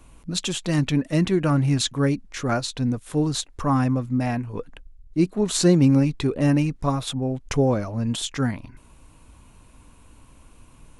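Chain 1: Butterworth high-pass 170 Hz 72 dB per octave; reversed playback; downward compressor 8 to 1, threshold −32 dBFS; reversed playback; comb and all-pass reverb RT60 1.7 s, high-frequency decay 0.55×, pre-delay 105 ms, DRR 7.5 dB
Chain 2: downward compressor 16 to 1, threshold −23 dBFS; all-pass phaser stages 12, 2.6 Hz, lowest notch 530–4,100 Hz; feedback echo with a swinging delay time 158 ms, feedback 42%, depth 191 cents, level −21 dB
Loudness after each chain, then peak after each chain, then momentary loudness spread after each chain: −35.5, −29.5 LKFS; −20.0, −14.5 dBFS; 21, 5 LU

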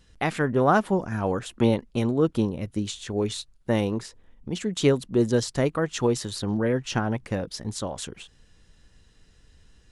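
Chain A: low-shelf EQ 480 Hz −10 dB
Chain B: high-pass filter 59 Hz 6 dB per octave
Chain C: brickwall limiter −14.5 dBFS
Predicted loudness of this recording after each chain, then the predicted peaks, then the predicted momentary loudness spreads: −31.0, −26.0, −27.5 LKFS; −9.5, −8.0, −14.5 dBFS; 10, 11, 8 LU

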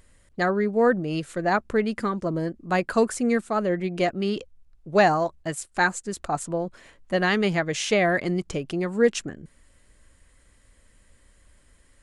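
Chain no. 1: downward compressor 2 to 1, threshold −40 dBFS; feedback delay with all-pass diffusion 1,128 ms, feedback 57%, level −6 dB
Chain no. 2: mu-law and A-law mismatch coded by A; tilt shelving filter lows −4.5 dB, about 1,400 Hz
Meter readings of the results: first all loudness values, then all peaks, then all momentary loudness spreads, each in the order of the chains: −35.5, −27.0 LKFS; −19.5, −8.0 dBFS; 11, 10 LU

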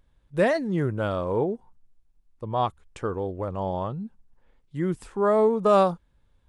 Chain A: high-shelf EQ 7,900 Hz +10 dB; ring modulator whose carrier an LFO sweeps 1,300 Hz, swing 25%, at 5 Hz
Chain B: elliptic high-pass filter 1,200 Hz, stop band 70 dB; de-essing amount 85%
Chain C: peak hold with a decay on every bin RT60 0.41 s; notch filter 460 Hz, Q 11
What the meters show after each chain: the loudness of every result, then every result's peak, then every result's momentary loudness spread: −27.0, −35.5, −25.5 LKFS; −8.5, −19.0, −8.5 dBFS; 16, 18, 16 LU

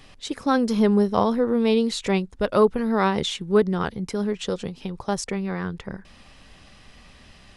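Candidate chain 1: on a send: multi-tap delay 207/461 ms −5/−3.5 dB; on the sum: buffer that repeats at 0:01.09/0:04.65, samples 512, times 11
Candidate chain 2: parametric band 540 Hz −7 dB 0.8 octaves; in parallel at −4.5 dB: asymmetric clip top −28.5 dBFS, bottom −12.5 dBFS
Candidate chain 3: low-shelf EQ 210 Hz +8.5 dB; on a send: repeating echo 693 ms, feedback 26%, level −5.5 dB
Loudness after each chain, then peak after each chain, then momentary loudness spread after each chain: −21.0, −21.5, −19.5 LKFS; −4.5, −6.0, −3.5 dBFS; 11, 11, 14 LU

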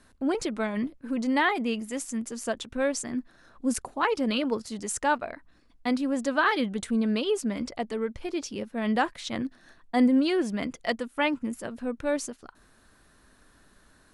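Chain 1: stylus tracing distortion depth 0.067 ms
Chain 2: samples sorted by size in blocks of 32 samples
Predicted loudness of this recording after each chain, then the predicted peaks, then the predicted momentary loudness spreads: −28.5, −27.5 LKFS; −11.5, −11.5 dBFS; 10, 10 LU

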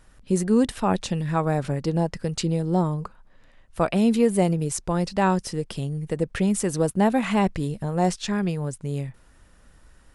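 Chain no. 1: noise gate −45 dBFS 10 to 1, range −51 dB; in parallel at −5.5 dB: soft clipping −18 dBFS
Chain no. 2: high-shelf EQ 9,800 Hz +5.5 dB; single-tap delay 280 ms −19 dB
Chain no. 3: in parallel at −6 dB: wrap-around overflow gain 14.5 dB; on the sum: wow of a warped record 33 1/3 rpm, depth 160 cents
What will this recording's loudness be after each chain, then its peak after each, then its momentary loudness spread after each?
−21.5, −24.0, −22.0 LKFS; −6.0, −7.0, −6.5 dBFS; 9, 9, 8 LU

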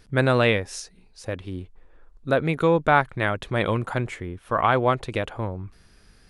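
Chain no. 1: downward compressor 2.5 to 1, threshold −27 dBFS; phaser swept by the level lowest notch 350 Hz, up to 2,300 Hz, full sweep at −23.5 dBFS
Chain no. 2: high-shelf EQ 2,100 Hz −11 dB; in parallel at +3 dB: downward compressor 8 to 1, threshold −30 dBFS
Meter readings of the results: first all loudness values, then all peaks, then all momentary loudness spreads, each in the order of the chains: −32.5, −22.5 LKFS; −15.0, −5.0 dBFS; 13, 15 LU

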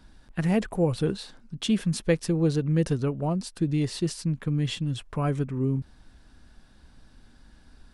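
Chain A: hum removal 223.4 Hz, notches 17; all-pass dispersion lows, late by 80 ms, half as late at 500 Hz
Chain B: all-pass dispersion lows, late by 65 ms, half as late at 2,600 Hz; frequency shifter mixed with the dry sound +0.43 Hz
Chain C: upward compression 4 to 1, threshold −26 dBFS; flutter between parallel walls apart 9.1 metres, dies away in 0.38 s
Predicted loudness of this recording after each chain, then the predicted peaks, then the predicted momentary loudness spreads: −27.5, −30.5, −26.5 LKFS; −11.5, −13.0, −11.0 dBFS; 6, 7, 16 LU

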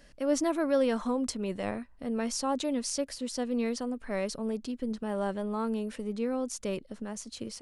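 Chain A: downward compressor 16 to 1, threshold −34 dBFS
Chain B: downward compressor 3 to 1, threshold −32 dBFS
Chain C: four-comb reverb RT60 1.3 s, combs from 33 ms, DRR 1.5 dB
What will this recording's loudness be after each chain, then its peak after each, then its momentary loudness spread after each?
−39.0, −36.0, −30.0 LKFS; −22.0, −19.0, −11.0 dBFS; 3, 5, 9 LU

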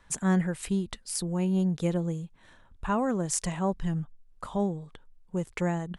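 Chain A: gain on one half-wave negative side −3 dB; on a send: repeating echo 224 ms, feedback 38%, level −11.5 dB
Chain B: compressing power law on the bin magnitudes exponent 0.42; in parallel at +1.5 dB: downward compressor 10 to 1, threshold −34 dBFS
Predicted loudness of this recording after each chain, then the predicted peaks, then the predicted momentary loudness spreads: −31.0, −26.0 LKFS; −12.0, −4.5 dBFS; 14, 12 LU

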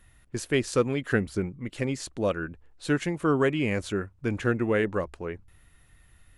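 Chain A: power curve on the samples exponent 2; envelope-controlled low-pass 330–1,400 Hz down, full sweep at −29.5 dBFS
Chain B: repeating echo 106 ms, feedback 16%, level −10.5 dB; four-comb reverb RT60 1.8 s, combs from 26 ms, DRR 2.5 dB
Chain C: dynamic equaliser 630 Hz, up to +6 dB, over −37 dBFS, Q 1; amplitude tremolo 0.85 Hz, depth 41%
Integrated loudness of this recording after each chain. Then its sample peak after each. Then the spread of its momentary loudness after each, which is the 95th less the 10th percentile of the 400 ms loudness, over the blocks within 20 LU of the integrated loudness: −31.5, −26.0, −26.5 LKFS; −12.5, −9.0, −7.0 dBFS; 14, 11, 15 LU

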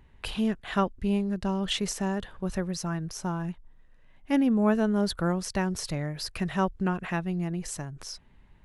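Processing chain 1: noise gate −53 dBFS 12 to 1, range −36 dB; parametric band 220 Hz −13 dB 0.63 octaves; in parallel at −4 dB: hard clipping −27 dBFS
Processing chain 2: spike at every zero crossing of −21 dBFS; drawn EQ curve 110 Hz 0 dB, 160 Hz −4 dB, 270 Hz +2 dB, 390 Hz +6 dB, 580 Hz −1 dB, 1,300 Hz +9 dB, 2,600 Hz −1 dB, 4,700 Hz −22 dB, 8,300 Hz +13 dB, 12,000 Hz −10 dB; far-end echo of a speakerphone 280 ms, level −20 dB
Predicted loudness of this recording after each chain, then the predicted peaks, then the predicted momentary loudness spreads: −29.5, −25.0 LKFS; −12.5, −7.5 dBFS; 8, 10 LU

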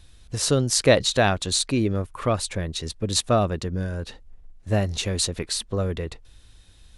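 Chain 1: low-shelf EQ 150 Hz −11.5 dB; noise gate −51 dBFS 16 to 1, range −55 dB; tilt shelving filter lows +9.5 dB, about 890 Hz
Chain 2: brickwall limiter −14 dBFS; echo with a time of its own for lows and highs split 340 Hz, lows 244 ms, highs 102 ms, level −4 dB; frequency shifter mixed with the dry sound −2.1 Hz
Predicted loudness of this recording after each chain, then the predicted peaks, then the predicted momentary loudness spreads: −22.5, −27.5 LKFS; −2.5, −11.0 dBFS; 13, 12 LU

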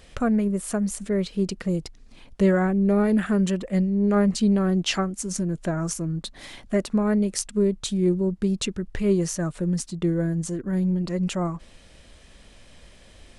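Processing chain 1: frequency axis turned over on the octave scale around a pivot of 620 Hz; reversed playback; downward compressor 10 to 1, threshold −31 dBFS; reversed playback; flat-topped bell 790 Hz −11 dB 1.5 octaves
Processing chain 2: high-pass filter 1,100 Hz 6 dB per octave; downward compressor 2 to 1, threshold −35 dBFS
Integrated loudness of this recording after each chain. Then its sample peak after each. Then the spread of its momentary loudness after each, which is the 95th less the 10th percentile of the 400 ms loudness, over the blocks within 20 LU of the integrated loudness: −34.5, −37.0 LKFS; −24.0, −12.5 dBFS; 18, 19 LU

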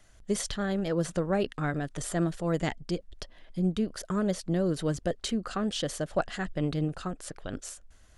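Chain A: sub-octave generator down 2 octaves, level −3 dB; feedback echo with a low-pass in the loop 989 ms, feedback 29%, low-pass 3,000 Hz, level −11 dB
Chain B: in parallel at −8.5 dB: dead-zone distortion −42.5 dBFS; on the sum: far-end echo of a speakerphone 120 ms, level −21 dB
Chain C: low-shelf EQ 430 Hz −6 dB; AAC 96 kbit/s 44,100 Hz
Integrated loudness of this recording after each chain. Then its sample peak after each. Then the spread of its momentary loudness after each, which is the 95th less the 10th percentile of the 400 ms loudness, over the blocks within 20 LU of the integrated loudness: −30.5, −29.0, −34.5 LKFS; −14.5, −12.0, −16.5 dBFS; 9, 11, 9 LU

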